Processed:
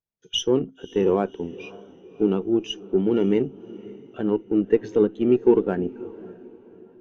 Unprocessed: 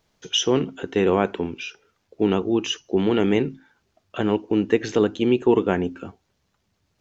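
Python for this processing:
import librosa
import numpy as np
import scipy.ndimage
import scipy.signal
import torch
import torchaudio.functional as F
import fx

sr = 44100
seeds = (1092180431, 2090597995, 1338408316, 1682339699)

y = fx.cheby_harmonics(x, sr, harmonics=(8,), levels_db=(-25,), full_scale_db=-5.5)
y = fx.echo_diffused(y, sr, ms=564, feedback_pct=54, wet_db=-13)
y = fx.spectral_expand(y, sr, expansion=1.5)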